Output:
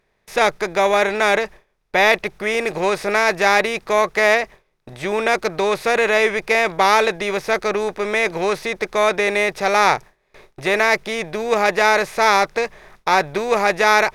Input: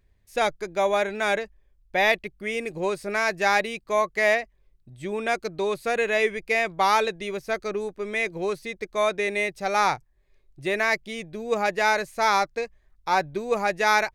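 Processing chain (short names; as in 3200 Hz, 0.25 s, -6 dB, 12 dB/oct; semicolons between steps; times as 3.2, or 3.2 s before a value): per-bin compression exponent 0.6; gate with hold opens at -37 dBFS; gain +3.5 dB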